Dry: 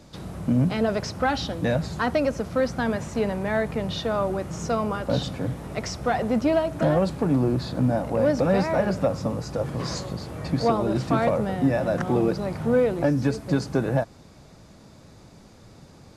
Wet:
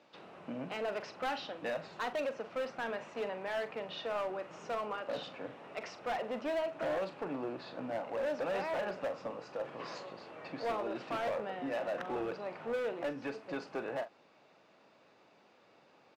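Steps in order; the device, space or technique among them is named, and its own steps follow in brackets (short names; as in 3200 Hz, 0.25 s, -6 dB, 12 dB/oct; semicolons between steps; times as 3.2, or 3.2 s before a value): megaphone (BPF 470–3000 Hz; bell 2700 Hz +7.5 dB 0.28 oct; hard clip -23.5 dBFS, distortion -11 dB; doubler 43 ms -12 dB); gain -8 dB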